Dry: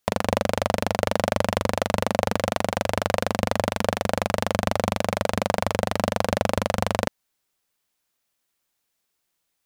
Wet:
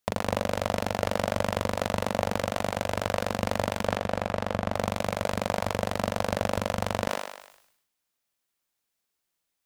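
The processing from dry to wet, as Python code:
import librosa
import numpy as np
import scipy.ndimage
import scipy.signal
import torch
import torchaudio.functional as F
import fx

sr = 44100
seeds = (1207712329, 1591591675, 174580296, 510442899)

y = fx.high_shelf(x, sr, hz=fx.line((3.84, 7000.0), (4.74, 3600.0)), db=-11.5, at=(3.84, 4.74), fade=0.02)
y = fx.echo_thinned(y, sr, ms=102, feedback_pct=49, hz=400.0, wet_db=-20.0)
y = fx.sustainer(y, sr, db_per_s=67.0)
y = y * librosa.db_to_amplitude(-5.0)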